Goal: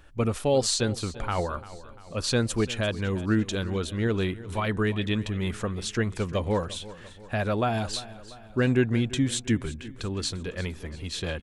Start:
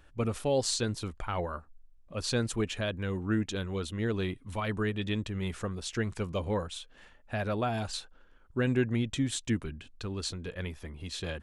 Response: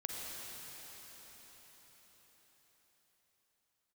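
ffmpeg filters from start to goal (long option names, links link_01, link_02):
-af "aecho=1:1:345|690|1035|1380|1725:0.141|0.0735|0.0382|0.0199|0.0103,volume=5dB"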